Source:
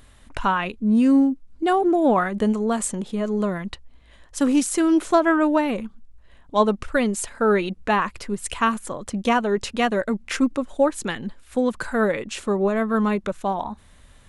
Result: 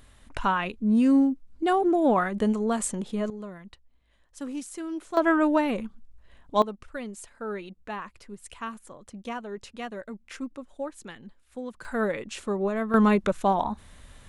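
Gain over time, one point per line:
-3.5 dB
from 3.3 s -15.5 dB
from 5.17 s -3 dB
from 6.62 s -15 dB
from 11.85 s -6 dB
from 12.94 s +1.5 dB

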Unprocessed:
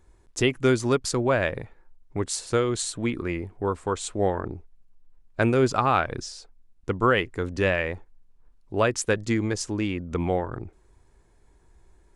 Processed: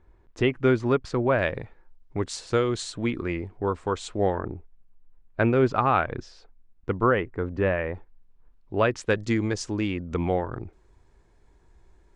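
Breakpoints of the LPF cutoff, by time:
2500 Hz
from 1.39 s 5200 Hz
from 4.37 s 2700 Hz
from 7.03 s 1600 Hz
from 7.94 s 3600 Hz
from 9.09 s 6200 Hz

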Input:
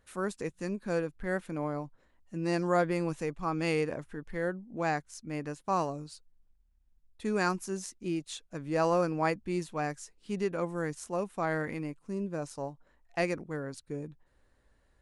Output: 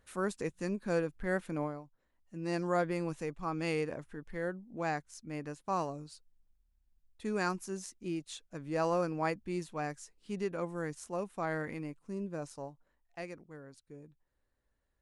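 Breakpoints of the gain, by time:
1.62 s -0.5 dB
1.85 s -13.5 dB
2.56 s -4 dB
12.46 s -4 dB
13.21 s -13 dB

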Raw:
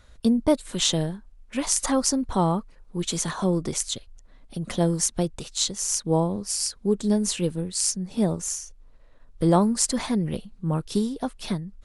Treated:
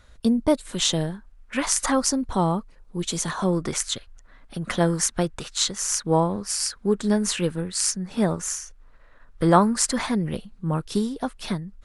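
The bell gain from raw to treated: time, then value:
bell 1500 Hz 1.4 oct
0.93 s +2 dB
1.56 s +12 dB
2.32 s +0.5 dB
3.19 s +0.5 dB
3.73 s +12 dB
9.68 s +12 dB
10.23 s +5 dB

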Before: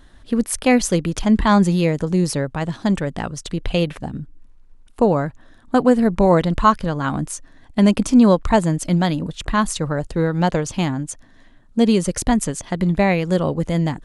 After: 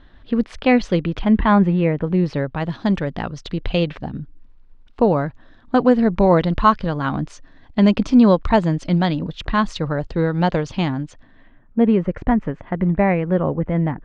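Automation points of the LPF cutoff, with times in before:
LPF 24 dB/oct
0.96 s 3900 Hz
1.82 s 2400 Hz
2.73 s 4700 Hz
11.01 s 4700 Hz
11.79 s 2100 Hz

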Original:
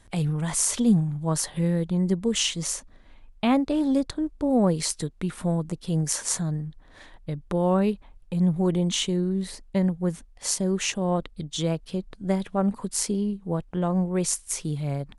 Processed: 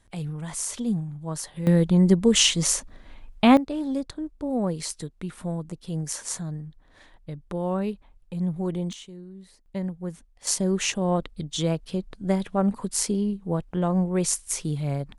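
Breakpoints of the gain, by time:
-6.5 dB
from 1.67 s +6 dB
from 3.57 s -5 dB
from 8.93 s -17 dB
from 9.66 s -7 dB
from 10.47 s +1 dB

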